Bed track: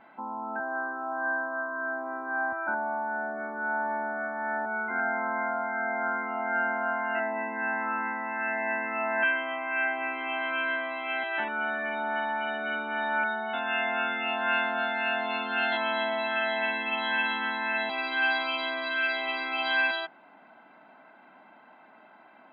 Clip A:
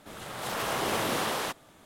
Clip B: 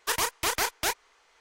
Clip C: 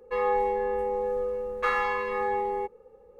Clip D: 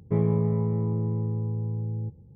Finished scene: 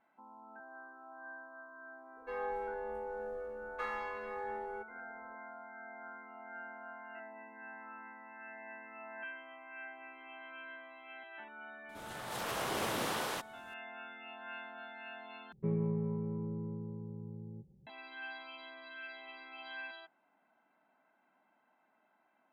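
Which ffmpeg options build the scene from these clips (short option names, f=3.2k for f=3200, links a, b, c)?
-filter_complex "[0:a]volume=-19.5dB[a];[4:a]aecho=1:1:5.3:0.98[b];[a]asplit=2[c][d];[c]atrim=end=15.524[e];[b]atrim=end=2.35,asetpts=PTS-STARTPTS,volume=-13.5dB[f];[d]atrim=start=17.866[g];[3:a]atrim=end=3.19,asetpts=PTS-STARTPTS,volume=-13.5dB,afade=t=in:d=0.004:c=hsin,afade=t=out:st=3.186:d=0.004:c=hsin,adelay=2160[h];[1:a]atrim=end=1.85,asetpts=PTS-STARTPTS,volume=-6.5dB,afade=t=in:d=0.004:c=hsin,afade=t=out:st=1.846:d=0.004:c=hsin,adelay=11890[i];[e][f]acrossfade=d=0.004:c1=hsin:c2=hsin[j];[j][g]acrossfade=d=0.004:c1=hsin:c2=hsin[k];[k][h][i]amix=inputs=3:normalize=0"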